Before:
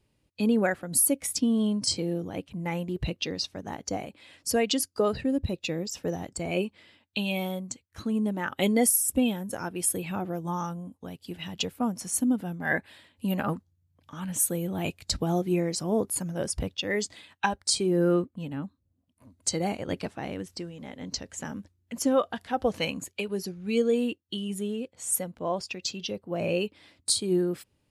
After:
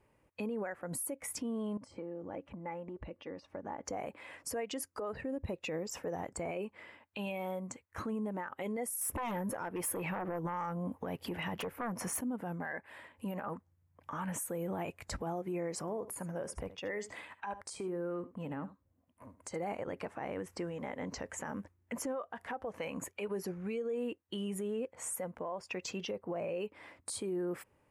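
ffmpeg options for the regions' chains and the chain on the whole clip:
ffmpeg -i in.wav -filter_complex "[0:a]asettb=1/sr,asplit=3[link_01][link_02][link_03];[link_01]atrim=end=1.774[link_04];[link_02]atrim=start=1.77:end=3.85,asetpts=PTS-STARTPTS,afade=type=in:duration=0.004:curve=qsin,afade=type=out:start_time=2.076:duration=0.004:curve=qsin,acompressor=threshold=-40dB:ratio=16:attack=3.2:release=140:knee=1:detection=peak,lowpass=frequency=1700:poles=1,aecho=1:1:3.5:0.34,atrim=end_sample=91728[link_05];[link_03]atrim=start=3.846[link_06];[link_04][link_05]acrossfade=duration=0.004:curve1=hsin:curve2=qsin[link_07];[link_07][link_06]acrossfade=duration=0.004:curve1=qsin:curve2=hsin,asettb=1/sr,asplit=3[link_08][link_09][link_10];[link_08]atrim=end=9.014[link_11];[link_09]atrim=start=9.01:end=12.21,asetpts=PTS-STARTPTS,afade=type=in:duration=0.004:curve=qsin,afade=type=out:start_time=3.196:duration=0.004:curve=qsin,equalizer=frequency=7900:width=1.6:gain=-8,aeval=exprs='0.211*sin(PI/2*3.98*val(0)/0.211)':channel_layout=same[link_12];[link_10]atrim=start=12.206[link_13];[link_11][link_12]acrossfade=duration=0.004:curve1=hsin:curve2=qsin[link_14];[link_14][link_13]acrossfade=duration=0.004:curve1=qsin:curve2=hsin,asettb=1/sr,asplit=3[link_15][link_16][link_17];[link_15]atrim=end=15.804[link_18];[link_16]atrim=start=15.8:end=19.56,asetpts=PTS-STARTPTS,afade=type=in:duration=0.004:curve=qsin,afade=type=out:start_time=3.756:duration=0.004:curve=qsin,acompressor=threshold=-36dB:ratio=10:attack=3.2:release=140:knee=1:detection=peak,aecho=1:1:75:0.168,atrim=end_sample=165816[link_19];[link_17]atrim=start=19.556[link_20];[link_18][link_19]acrossfade=duration=0.004:curve1=hsin:curve2=qsin[link_21];[link_21][link_20]acrossfade=duration=0.004:curve1=qsin:curve2=hsin,equalizer=frequency=500:width_type=o:width=1:gain=7,equalizer=frequency=1000:width_type=o:width=1:gain=10,equalizer=frequency=2000:width_type=o:width=1:gain=8,equalizer=frequency=4000:width_type=o:width=1:gain=-11,acompressor=threshold=-27dB:ratio=12,alimiter=level_in=3.5dB:limit=-24dB:level=0:latency=1:release=55,volume=-3.5dB,volume=-2.5dB" out.wav

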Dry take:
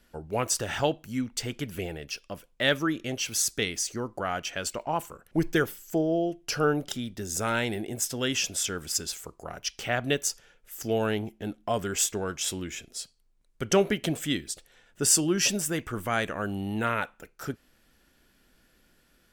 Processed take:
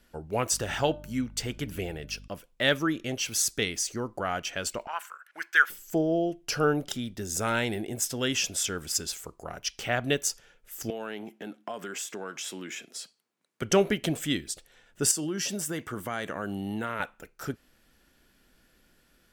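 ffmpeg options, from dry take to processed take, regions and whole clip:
ffmpeg -i in.wav -filter_complex "[0:a]asettb=1/sr,asplit=3[link_01][link_02][link_03];[link_01]atrim=end=0.524[link_04];[link_02]atrim=start=0.52:end=2.28,asetpts=PTS-STARTPTS,afade=type=in:duration=0.004:curve=qsin,afade=type=out:start_time=1.756:duration=0.004:curve=qsin,bandreject=frequency=299:width_type=h:width=4,bandreject=frequency=598:width_type=h:width=4,bandreject=frequency=897:width_type=h:width=4,bandreject=frequency=1196:width_type=h:width=4,bandreject=frequency=1495:width_type=h:width=4,aeval=exprs='val(0)+0.00501*(sin(2*PI*50*n/s)+sin(2*PI*2*50*n/s)/2+sin(2*PI*3*50*n/s)/3+sin(2*PI*4*50*n/s)/4+sin(2*PI*5*50*n/s)/5)':channel_layout=same[link_05];[link_03]atrim=start=2.276[link_06];[link_04][link_05]acrossfade=duration=0.004:curve1=hsin:curve2=qsin[link_07];[link_07][link_06]acrossfade=duration=0.004:curve1=qsin:curve2=hsin,asettb=1/sr,asplit=3[link_08][link_09][link_10];[link_08]atrim=end=4.874[link_11];[link_09]atrim=start=4.87:end=5.7,asetpts=PTS-STARTPTS,afade=type=in:duration=0.004:curve=qsin,afade=type=out:start_time=0.826:duration=0.004:curve=qsin,highpass=frequency=1500:width_type=q:width=3.8,highshelf=frequency=5100:gain=-5[link_12];[link_10]atrim=start=5.696[link_13];[link_11][link_12]acrossfade=duration=0.004:curve1=hsin:curve2=qsin[link_14];[link_14][link_13]acrossfade=duration=0.004:curve1=qsin:curve2=hsin,asettb=1/sr,asplit=3[link_15][link_16][link_17];[link_15]atrim=end=10.904[link_18];[link_16]atrim=start=10.9:end=13.62,asetpts=PTS-STARTPTS,afade=type=in:duration=0.004:curve=qsin,afade=type=out:start_time=2.716:duration=0.004:curve=qsin,equalizer=frequency=1500:width=0.57:gain=5.5,acompressor=threshold=-34dB:ratio=4:attack=3.2:release=140:knee=1:detection=peak,highpass=frequency=180:width=0.5412,highpass=frequency=180:width=1.3066[link_19];[link_17]atrim=start=13.616[link_20];[link_18][link_19]acrossfade=duration=0.004:curve1=hsin:curve2=qsin[link_21];[link_21][link_20]acrossfade=duration=0.004:curve1=qsin:curve2=hsin,asettb=1/sr,asplit=3[link_22][link_23][link_24];[link_22]atrim=end=15.114[link_25];[link_23]atrim=start=15.11:end=17,asetpts=PTS-STARTPTS,afade=type=in:duration=0.004:curve=qsin,afade=type=out:start_time=1.886:duration=0.004:curve=qsin,bandreject=frequency=2500:width=9.9,acompressor=threshold=-28dB:ratio=4:attack=3.2:release=140:knee=1:detection=peak,highpass=120[link_26];[link_24]atrim=start=16.996[link_27];[link_25][link_26]acrossfade=duration=0.004:curve1=hsin:curve2=qsin[link_28];[link_28][link_27]acrossfade=duration=0.004:curve1=qsin:curve2=hsin" out.wav

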